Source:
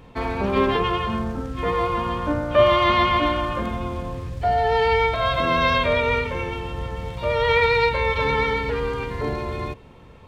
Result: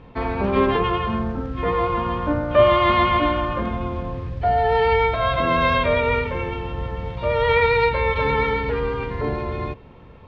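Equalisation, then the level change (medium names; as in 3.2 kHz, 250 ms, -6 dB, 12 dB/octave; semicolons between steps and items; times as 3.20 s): distance through air 210 m; +2.0 dB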